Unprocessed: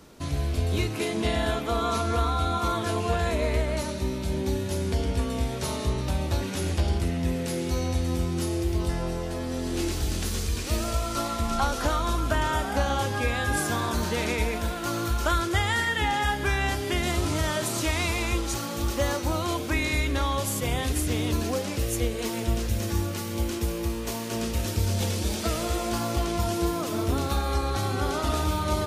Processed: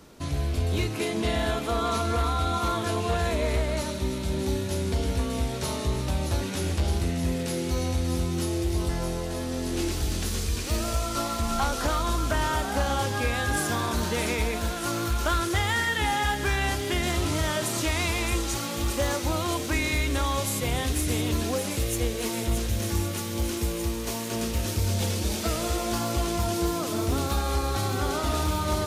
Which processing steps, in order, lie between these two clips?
overloaded stage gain 19 dB; on a send: thin delay 0.621 s, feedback 83%, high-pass 3800 Hz, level -7 dB

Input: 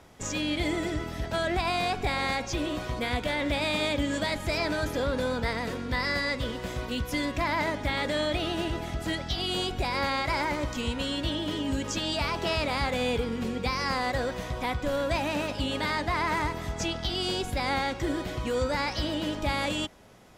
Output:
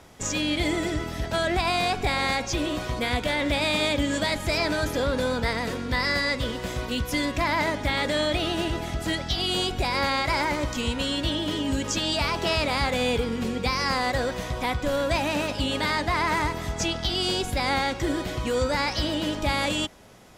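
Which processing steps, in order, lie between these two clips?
bell 8600 Hz +3 dB 2.4 oct; gain +3 dB

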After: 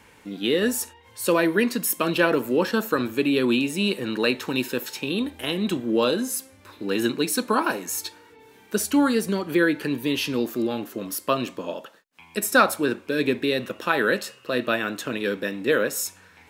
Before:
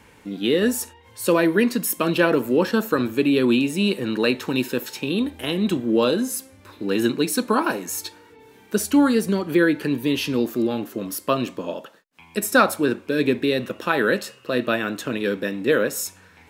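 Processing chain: low shelf 480 Hz -4.5 dB

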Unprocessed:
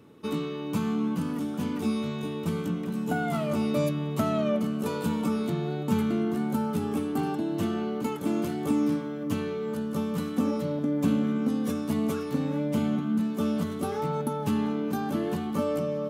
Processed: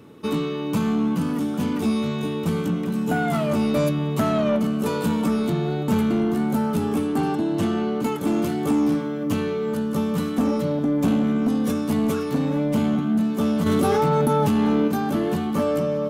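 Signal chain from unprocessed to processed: 7.06–8.01 LPF 12000 Hz 12 dB/oct; soft clip -20.5 dBFS, distortion -19 dB; 13.66–14.88 fast leveller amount 100%; gain +7 dB

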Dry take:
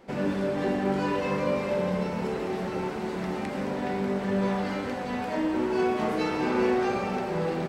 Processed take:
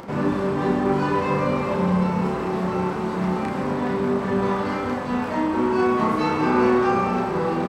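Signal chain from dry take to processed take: HPF 52 Hz; low shelf 350 Hz +7.5 dB; upward compressor, threshold -34 dBFS; bell 1100 Hz +10 dB 0.68 oct; doubler 33 ms -3.5 dB

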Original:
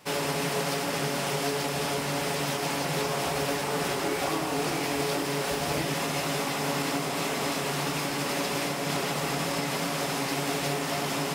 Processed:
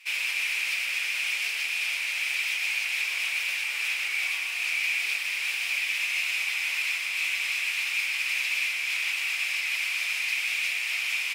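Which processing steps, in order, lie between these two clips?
resonant high-pass 2400 Hz, resonance Q 8.1; added harmonics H 4 -43 dB, 5 -30 dB, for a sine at -11 dBFS; outdoor echo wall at 21 m, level -6 dB; gain -5 dB

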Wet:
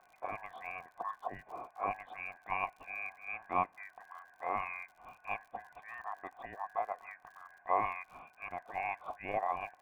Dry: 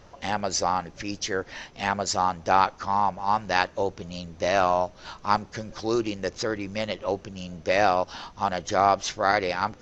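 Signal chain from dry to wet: four-band scrambler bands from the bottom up 2143; vocal tract filter a; crackle 72/s -62 dBFS; gain +11 dB

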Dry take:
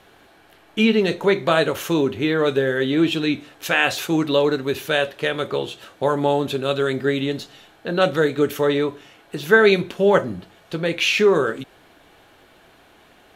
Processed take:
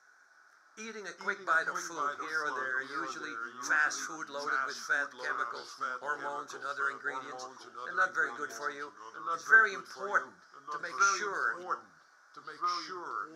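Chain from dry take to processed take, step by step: double band-pass 2900 Hz, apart 2 oct; echoes that change speed 0.314 s, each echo -2 st, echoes 2, each echo -6 dB

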